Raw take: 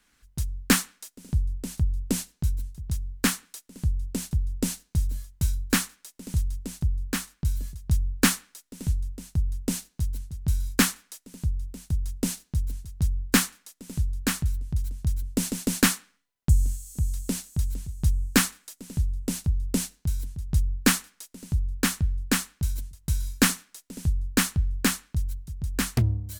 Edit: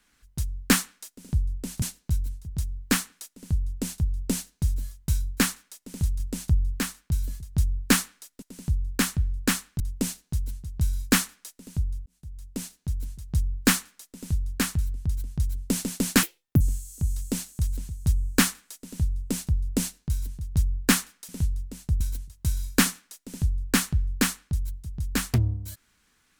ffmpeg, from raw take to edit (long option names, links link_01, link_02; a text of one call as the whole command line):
ffmpeg -i in.wav -filter_complex "[0:a]asplit=11[link_01][link_02][link_03][link_04][link_05][link_06][link_07][link_08][link_09][link_10][link_11];[link_01]atrim=end=1.822[link_12];[link_02]atrim=start=2.148:end=6.532[link_13];[link_03]atrim=start=6.528:end=7.132,asetpts=PTS-STARTPTS,volume=3.5dB[link_14];[link_04]atrim=start=7.128:end=8.752[link_15];[link_05]atrim=start=21.258:end=22.642[link_16];[link_06]atrim=start=9.468:end=11.73,asetpts=PTS-STARTPTS,afade=type=out:start_time=2.258:duration=0.004:curve=hsin[link_17];[link_07]atrim=start=11.73:end=15.904,asetpts=PTS-STARTPTS,afade=type=in:duration=1.15[link_18];[link_08]atrim=start=15.9:end=16.58,asetpts=PTS-STARTPTS,asetrate=79821,aresample=44100[link_19];[link_09]atrim=start=16.576:end=21.262[link_20];[link_10]atrim=start=8.748:end=9.472[link_21];[link_11]atrim=start=22.638[link_22];[link_12][link_13]acrossfade=duration=0.004:curve1=hsin:curve2=hsin[link_23];[link_23][link_14]acrossfade=duration=0.004:curve1=hsin:curve2=hsin[link_24];[link_24][link_15]acrossfade=duration=0.004:curve1=hsin:curve2=hsin[link_25];[link_25][link_16]acrossfade=duration=0.004:curve1=hsin:curve2=hsin[link_26];[link_17][link_18]concat=n=2:v=0:a=1[link_27];[link_26][link_27]acrossfade=duration=0.004:curve1=hsin:curve2=hsin[link_28];[link_28][link_19]acrossfade=duration=0.004:curve1=hsin:curve2=hsin[link_29];[link_29][link_20]acrossfade=duration=0.004:curve1=hsin:curve2=hsin[link_30];[link_30][link_21]acrossfade=duration=0.004:curve1=hsin:curve2=hsin[link_31];[link_31][link_22]acrossfade=duration=0.004:curve1=hsin:curve2=hsin" out.wav